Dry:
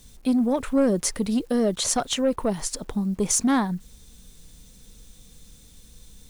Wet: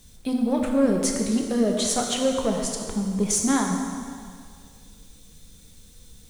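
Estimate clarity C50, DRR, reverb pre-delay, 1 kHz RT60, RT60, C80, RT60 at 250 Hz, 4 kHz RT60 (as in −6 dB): 3.5 dB, 1.5 dB, 5 ms, 2.1 s, 2.1 s, 4.5 dB, 2.0 s, 2.0 s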